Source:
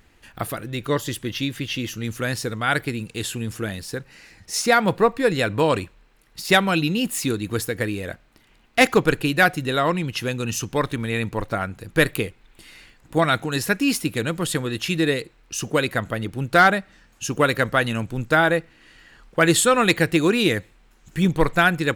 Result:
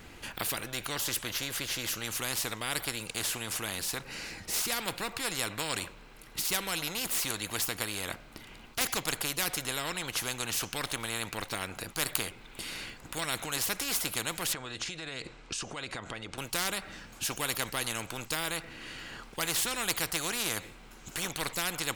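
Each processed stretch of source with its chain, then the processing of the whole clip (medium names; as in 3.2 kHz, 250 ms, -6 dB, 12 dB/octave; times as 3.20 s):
14.53–16.38 s: steep low-pass 8.5 kHz + compression 12:1, threshold -34 dBFS
whole clip: band-stop 1.8 kHz, Q 13; spectrum-flattening compressor 4:1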